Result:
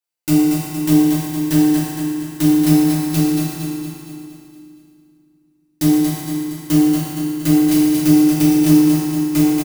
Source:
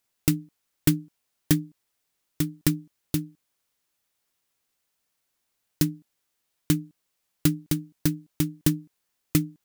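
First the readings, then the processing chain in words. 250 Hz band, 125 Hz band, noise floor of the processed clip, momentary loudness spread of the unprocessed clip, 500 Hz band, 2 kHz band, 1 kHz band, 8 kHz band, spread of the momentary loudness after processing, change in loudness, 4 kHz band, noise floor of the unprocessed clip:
+16.0 dB, +8.0 dB, -60 dBFS, 7 LU, +15.5 dB, +9.0 dB, +19.5 dB, +9.0 dB, 11 LU, +12.0 dB, +8.5 dB, -78 dBFS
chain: high-pass 68 Hz 6 dB/octave; bass shelf 240 Hz -8.5 dB; comb 5.8 ms, depth 55%; reverse; compression 6:1, threshold -26 dBFS, peak gain reduction 10 dB; reverse; waveshaping leveller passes 5; on a send: feedback delay 232 ms, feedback 54%, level -5 dB; on the sum: FDN reverb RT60 2.5 s, low-frequency decay 1.45×, high-frequency decay 0.7×, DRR -8 dB; trim -5 dB

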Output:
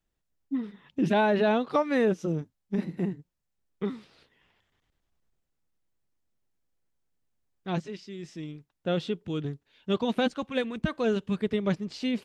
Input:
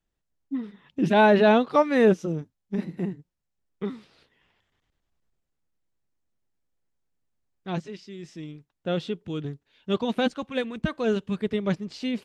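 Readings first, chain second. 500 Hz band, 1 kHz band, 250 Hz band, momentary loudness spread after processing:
-4.5 dB, -5.0 dB, -2.5 dB, 16 LU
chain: compression 4:1, threshold -21 dBFS, peak gain reduction 7 dB

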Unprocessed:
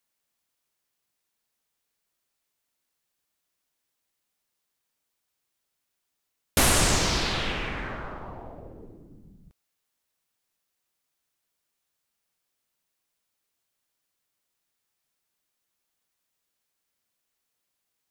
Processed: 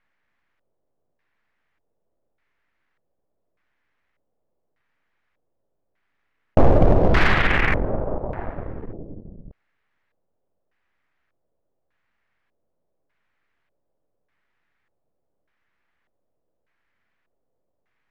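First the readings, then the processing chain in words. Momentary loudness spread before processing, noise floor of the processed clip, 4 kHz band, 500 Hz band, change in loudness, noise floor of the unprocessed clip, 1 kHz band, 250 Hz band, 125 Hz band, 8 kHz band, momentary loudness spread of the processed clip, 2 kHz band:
21 LU, -74 dBFS, -6.0 dB, +11.0 dB, +4.0 dB, -81 dBFS, +6.0 dB, +8.5 dB, +9.5 dB, under -20 dB, 19 LU, +7.0 dB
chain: partial rectifier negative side -12 dB; bass shelf 140 Hz +6 dB; LFO low-pass square 0.84 Hz 570–1900 Hz; in parallel at -8.5 dB: wavefolder -21.5 dBFS; on the sum: loudspeaker Doppler distortion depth 0.52 ms; trim +8.5 dB

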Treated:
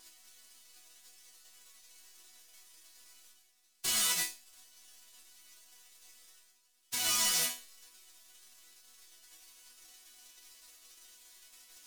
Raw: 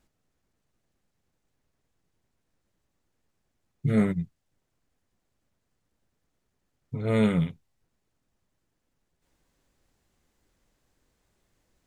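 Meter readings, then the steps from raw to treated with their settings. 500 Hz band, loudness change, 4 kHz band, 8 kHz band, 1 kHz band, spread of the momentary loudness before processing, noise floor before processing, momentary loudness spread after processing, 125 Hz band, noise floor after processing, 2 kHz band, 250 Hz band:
-21.0 dB, -3.5 dB, +15.0 dB, no reading, -2.0 dB, 13 LU, -78 dBFS, 11 LU, -31.0 dB, -70 dBFS, +1.0 dB, -28.0 dB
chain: formants flattened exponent 0.1; peaking EQ 6.3 kHz +11.5 dB 2.9 oct; in parallel at +3 dB: compression, threshold -25 dBFS, peak gain reduction 15 dB; on the sum: peak limiter -4 dBFS, peak gain reduction 6 dB; reverse; upward compressor, threshold -33 dBFS; reverse; vibrato 2.1 Hz 11 cents; hard clipper -13 dBFS, distortion -12 dB; chord resonator B3 sus4, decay 0.3 s; trim +5 dB

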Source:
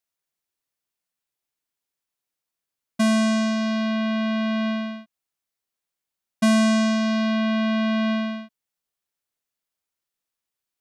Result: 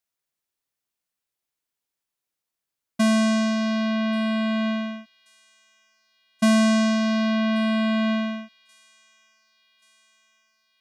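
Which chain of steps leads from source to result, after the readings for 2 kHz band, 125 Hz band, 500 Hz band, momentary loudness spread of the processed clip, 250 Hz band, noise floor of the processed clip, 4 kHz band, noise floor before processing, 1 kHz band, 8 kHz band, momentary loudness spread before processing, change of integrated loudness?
0.0 dB, no reading, 0.0 dB, 11 LU, 0.0 dB, under -85 dBFS, 0.0 dB, under -85 dBFS, 0.0 dB, 0.0 dB, 11 LU, 0.0 dB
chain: feedback echo behind a high-pass 1132 ms, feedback 59%, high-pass 3.1 kHz, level -20.5 dB

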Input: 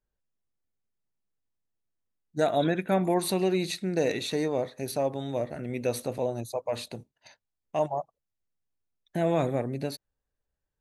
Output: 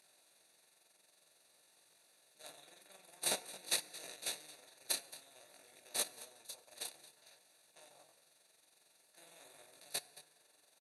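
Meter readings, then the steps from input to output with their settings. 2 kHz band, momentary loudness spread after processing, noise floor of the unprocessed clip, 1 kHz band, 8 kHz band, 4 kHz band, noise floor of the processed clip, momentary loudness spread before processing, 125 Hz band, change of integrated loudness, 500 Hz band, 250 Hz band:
-10.5 dB, 22 LU, under -85 dBFS, -21.0 dB, +0.5 dB, -4.0 dB, -72 dBFS, 10 LU, -36.0 dB, -11.5 dB, -26.5 dB, -32.0 dB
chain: spectral levelling over time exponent 0.2; pre-emphasis filter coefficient 0.97; de-hum 51.6 Hz, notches 10; gate -27 dBFS, range -36 dB; treble shelf 11 kHz -12 dB; compressor with a negative ratio -41 dBFS, ratio -1; AM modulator 22 Hz, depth 80%; on a send: delay 222 ms -17 dB; on the sum: FDN reverb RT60 1.6 s, high-frequency decay 0.45×, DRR 16 dB; detune thickener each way 18 cents; trim +17.5 dB

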